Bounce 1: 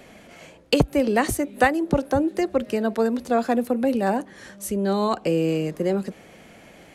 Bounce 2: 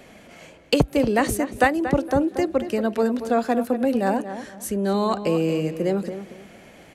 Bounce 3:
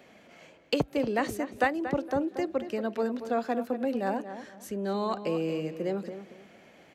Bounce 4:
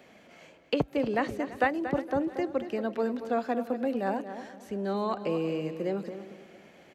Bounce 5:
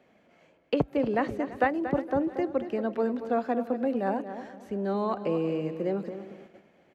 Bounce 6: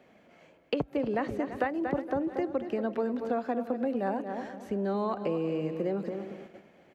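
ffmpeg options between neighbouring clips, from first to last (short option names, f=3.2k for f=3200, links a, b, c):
-filter_complex "[0:a]asplit=2[a][b];[b]adelay=232,lowpass=f=2.7k:p=1,volume=-10.5dB,asplit=2[c][d];[d]adelay=232,lowpass=f=2.7k:p=1,volume=0.26,asplit=2[e][f];[f]adelay=232,lowpass=f=2.7k:p=1,volume=0.26[g];[a][c][e][g]amix=inputs=4:normalize=0"
-af "highpass=f=180:p=1,equalizer=f=9.9k:t=o:w=0.77:g=-10.5,volume=-7dB"
-filter_complex "[0:a]aecho=1:1:337|674|1011:0.119|0.0475|0.019,acrossover=split=3900[a][b];[b]acompressor=threshold=-57dB:ratio=4:attack=1:release=60[c];[a][c]amix=inputs=2:normalize=0"
-af "highshelf=f=2.7k:g=-10,agate=range=-8dB:threshold=-51dB:ratio=16:detection=peak,volume=2dB"
-af "acompressor=threshold=-31dB:ratio=3,volume=3dB"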